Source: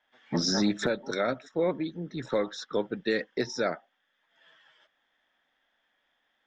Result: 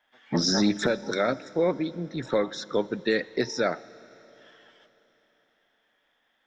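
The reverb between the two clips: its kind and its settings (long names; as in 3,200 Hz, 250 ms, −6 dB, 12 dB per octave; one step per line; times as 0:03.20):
four-comb reverb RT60 3.7 s, combs from 26 ms, DRR 18.5 dB
level +3 dB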